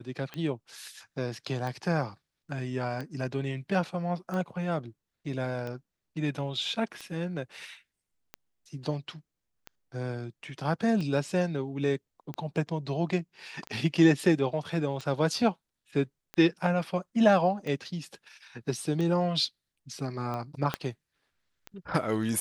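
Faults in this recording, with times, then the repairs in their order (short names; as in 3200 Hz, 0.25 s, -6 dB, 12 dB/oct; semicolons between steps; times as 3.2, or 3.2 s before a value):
tick 45 rpm -23 dBFS
20.74 pop -13 dBFS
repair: de-click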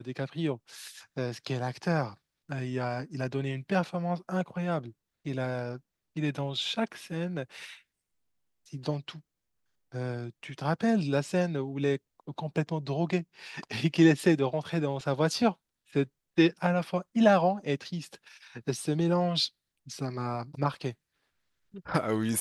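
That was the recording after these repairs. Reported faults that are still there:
20.74 pop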